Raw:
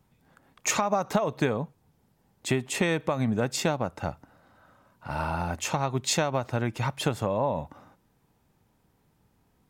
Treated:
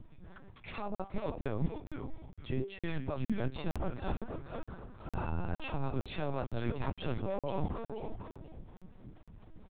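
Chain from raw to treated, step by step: bass shelf 98 Hz +9.5 dB; comb 5.2 ms, depth 71%; wow and flutter 23 cents; in parallel at +2 dB: peak limiter -16.5 dBFS, peak gain reduction 8.5 dB; on the sum: de-hum 391 Hz, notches 36; harmonic tremolo 4.3 Hz, depth 50%, crossover 450 Hz; reverse; compression 12:1, threshold -33 dBFS, peak gain reduction 22 dB; reverse; bass shelf 330 Hz +8.5 dB; frequency-shifting echo 482 ms, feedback 33%, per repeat -130 Hz, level -6 dB; LPC vocoder at 8 kHz pitch kept; crackling interface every 0.46 s, samples 2048, zero, from 0.95 s; trim -3 dB

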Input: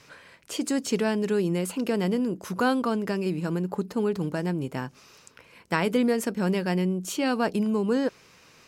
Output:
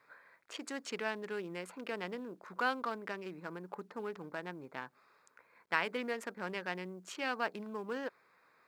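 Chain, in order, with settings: local Wiener filter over 15 samples; band-pass filter 2 kHz, Q 0.83; companded quantiser 8-bit; trim -2.5 dB

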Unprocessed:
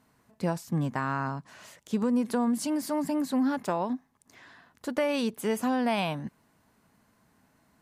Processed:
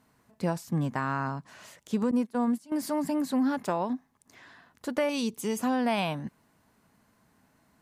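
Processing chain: 2.11–2.72 s: gate -26 dBFS, range -22 dB; 5.09–5.59 s: fifteen-band graphic EQ 630 Hz -10 dB, 1.6 kHz -10 dB, 6.3 kHz +7 dB

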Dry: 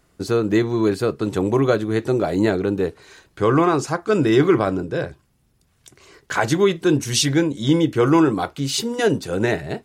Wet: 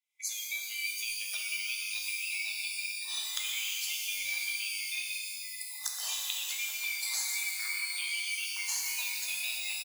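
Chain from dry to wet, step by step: split-band scrambler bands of 2 kHz; recorder AGC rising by 56 dB/s; on a send: delay 122 ms -9.5 dB; on the sum: spectral noise reduction 26 dB; high-pass 860 Hz 24 dB/octave; peaking EQ 1.6 kHz -12 dB 0.85 oct; compression 10:1, threshold -31 dBFS, peak gain reduction 19.5 dB; treble shelf 4 kHz +8.5 dB; pitch-shifted reverb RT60 2.1 s, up +12 st, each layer -2 dB, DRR 0 dB; trim -8 dB

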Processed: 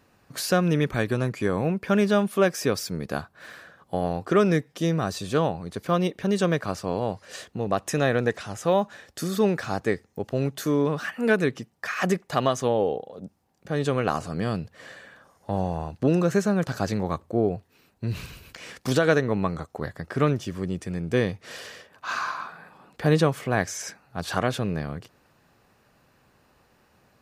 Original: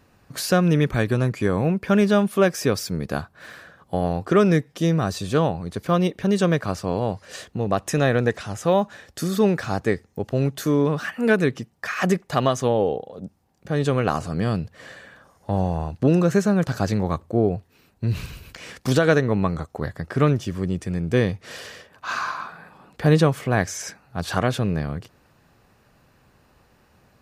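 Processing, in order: bass shelf 130 Hz -7 dB; trim -2 dB

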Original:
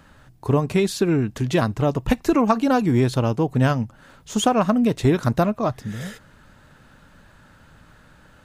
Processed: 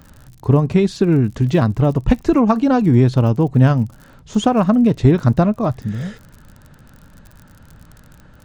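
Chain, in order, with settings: tape spacing loss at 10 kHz 26 dB; crackle 44 per s -42 dBFS; tone controls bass +5 dB, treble +10 dB; trim +3.5 dB

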